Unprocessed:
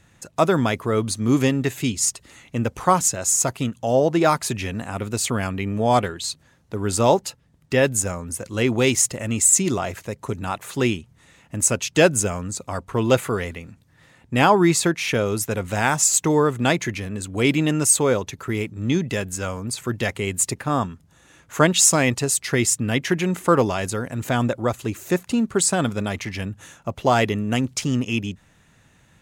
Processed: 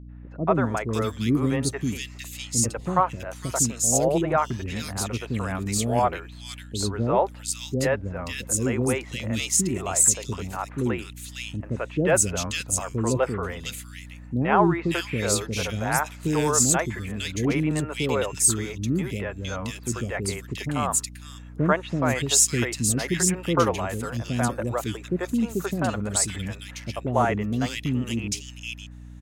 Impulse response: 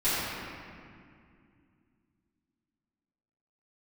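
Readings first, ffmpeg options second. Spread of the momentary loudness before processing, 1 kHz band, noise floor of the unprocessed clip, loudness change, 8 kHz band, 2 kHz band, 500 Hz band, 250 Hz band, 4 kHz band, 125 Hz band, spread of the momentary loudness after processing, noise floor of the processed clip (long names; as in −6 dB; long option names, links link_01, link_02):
12 LU, −3.5 dB, −57 dBFS, −3.5 dB, −2.5 dB, −4.5 dB, −5.0 dB, −3.5 dB, −3.5 dB, −2.5 dB, 13 LU, −42 dBFS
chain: -filter_complex "[0:a]acrossover=split=420|2300[link_01][link_02][link_03];[link_02]adelay=90[link_04];[link_03]adelay=550[link_05];[link_01][link_04][link_05]amix=inputs=3:normalize=0,aeval=exprs='val(0)+0.0126*(sin(2*PI*60*n/s)+sin(2*PI*2*60*n/s)/2+sin(2*PI*3*60*n/s)/3+sin(2*PI*4*60*n/s)/4+sin(2*PI*5*60*n/s)/5)':channel_layout=same,volume=-2.5dB"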